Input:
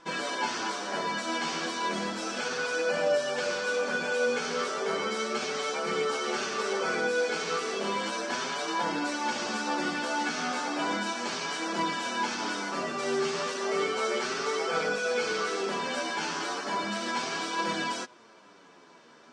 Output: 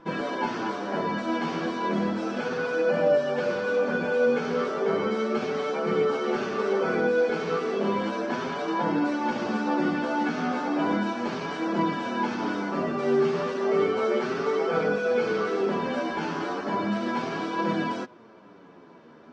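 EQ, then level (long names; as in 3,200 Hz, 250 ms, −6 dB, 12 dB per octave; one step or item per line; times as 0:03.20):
head-to-tape spacing loss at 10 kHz 25 dB
low-shelf EQ 450 Hz +9.5 dB
+2.5 dB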